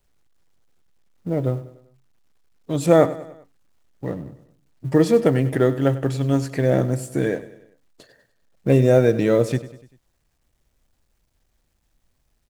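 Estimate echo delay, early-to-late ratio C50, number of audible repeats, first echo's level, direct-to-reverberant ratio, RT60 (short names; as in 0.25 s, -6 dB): 98 ms, none, 4, -16.0 dB, none, none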